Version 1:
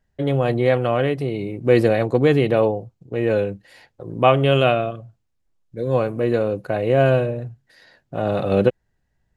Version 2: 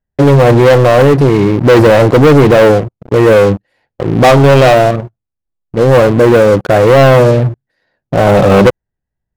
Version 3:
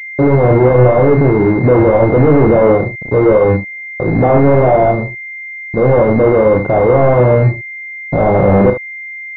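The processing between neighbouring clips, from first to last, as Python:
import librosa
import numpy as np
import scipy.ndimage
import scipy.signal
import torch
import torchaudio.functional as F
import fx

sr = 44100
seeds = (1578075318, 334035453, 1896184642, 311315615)

y1 = fx.high_shelf(x, sr, hz=2400.0, db=-11.5)
y1 = fx.leveller(y1, sr, passes=5)
y1 = y1 * librosa.db_to_amplitude(2.0)
y2 = 10.0 ** (-10.0 / 20.0) * np.tanh(y1 / 10.0 ** (-10.0 / 20.0))
y2 = fx.room_early_taps(y2, sr, ms=(32, 72), db=(-7.0, -10.0))
y2 = fx.pwm(y2, sr, carrier_hz=2100.0)
y2 = y2 * librosa.db_to_amplitude(2.5)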